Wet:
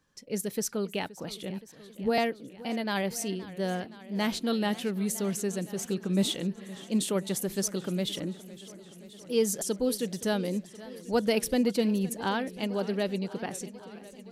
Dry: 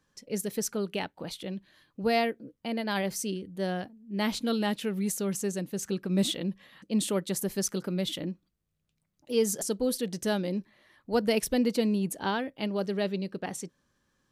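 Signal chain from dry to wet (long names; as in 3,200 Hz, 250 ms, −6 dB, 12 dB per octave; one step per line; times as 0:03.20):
0:01.50–0:02.18: all-pass dispersion highs, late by 41 ms, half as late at 530 Hz
feedback echo with a swinging delay time 521 ms, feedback 75%, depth 131 cents, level −18 dB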